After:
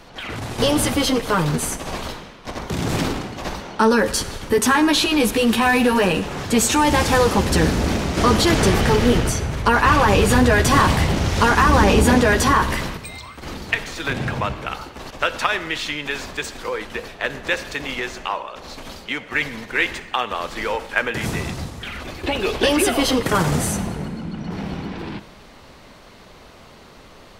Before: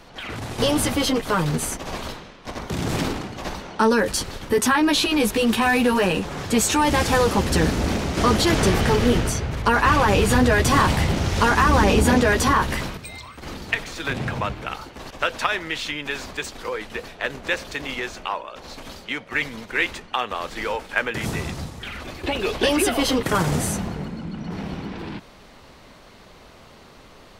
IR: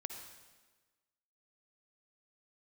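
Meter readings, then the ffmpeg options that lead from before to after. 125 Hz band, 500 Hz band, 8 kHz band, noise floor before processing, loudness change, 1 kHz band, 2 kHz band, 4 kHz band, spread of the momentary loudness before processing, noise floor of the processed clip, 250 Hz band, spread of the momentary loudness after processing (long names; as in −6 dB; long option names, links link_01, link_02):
+2.5 dB, +2.5 dB, +2.5 dB, −47 dBFS, +2.5 dB, +2.5 dB, +2.5 dB, +2.5 dB, 15 LU, −45 dBFS, +2.5 dB, 15 LU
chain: -filter_complex "[0:a]asplit=2[link_01][link_02];[1:a]atrim=start_sample=2205,asetrate=52920,aresample=44100[link_03];[link_02][link_03]afir=irnorm=-1:irlink=0,volume=-2dB[link_04];[link_01][link_04]amix=inputs=2:normalize=0,volume=-1dB"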